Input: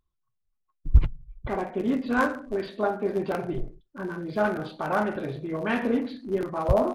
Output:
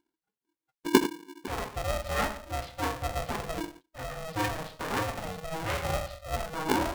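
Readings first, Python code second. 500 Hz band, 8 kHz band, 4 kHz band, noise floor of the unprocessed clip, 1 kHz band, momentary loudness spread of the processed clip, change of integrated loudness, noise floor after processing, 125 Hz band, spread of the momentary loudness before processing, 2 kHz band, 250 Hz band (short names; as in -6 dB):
-6.5 dB, n/a, +8.0 dB, -77 dBFS, -1.5 dB, 12 LU, -4.5 dB, under -85 dBFS, -6.5 dB, 12 LU, -2.5 dB, -5.0 dB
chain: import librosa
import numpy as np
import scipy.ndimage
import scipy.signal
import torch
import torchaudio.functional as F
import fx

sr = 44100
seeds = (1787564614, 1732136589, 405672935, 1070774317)

y = fx.diode_clip(x, sr, knee_db=-22.0)
y = fx.vibrato(y, sr, rate_hz=0.58, depth_cents=30.0)
y = y * np.sign(np.sin(2.0 * np.pi * 320.0 * np.arange(len(y)) / sr))
y = F.gain(torch.from_numpy(y), -3.5).numpy()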